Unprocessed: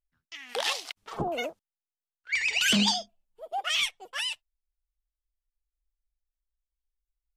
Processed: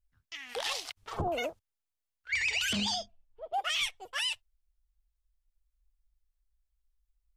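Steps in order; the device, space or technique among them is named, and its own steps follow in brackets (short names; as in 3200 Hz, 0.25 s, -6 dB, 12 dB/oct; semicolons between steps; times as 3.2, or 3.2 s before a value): 2.73–3.54 low-pass opened by the level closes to 2300 Hz, open at -22.5 dBFS; car stereo with a boomy subwoofer (resonant low shelf 130 Hz +9.5 dB, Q 1.5; limiter -22.5 dBFS, peak gain reduction 9 dB)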